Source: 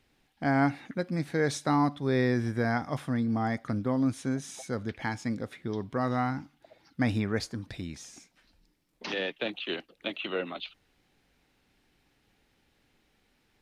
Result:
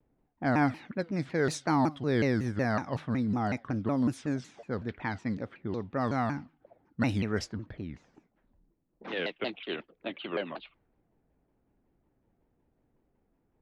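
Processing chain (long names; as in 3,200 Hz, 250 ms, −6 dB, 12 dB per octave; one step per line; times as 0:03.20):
low-pass that shuts in the quiet parts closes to 730 Hz, open at −23.5 dBFS
pitch modulation by a square or saw wave saw down 5.4 Hz, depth 250 cents
level −1 dB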